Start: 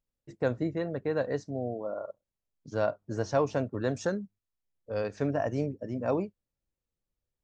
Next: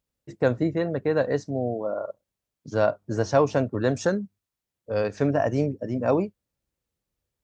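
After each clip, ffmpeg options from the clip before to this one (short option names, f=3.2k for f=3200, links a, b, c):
-af "highpass=46,volume=6.5dB"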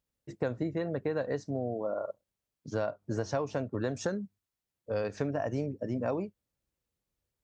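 -af "acompressor=threshold=-25dB:ratio=6,volume=-3dB"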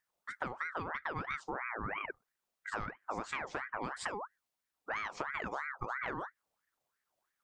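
-af "acompressor=threshold=-36dB:ratio=6,aeval=exprs='val(0)*sin(2*PI*1200*n/s+1200*0.5/3*sin(2*PI*3*n/s))':c=same,volume=3.5dB"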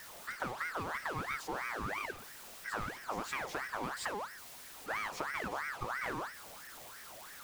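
-af "aeval=exprs='val(0)+0.5*0.00841*sgn(val(0))':c=same,volume=-1.5dB"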